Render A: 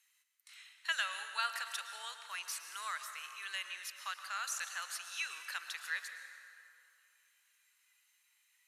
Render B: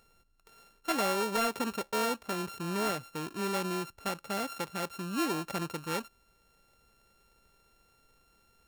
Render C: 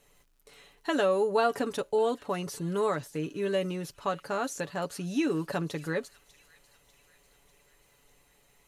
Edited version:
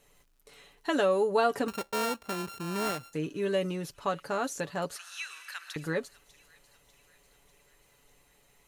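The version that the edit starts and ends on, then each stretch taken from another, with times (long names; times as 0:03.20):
C
0:01.68–0:03.13: punch in from B
0:04.96–0:05.76: punch in from A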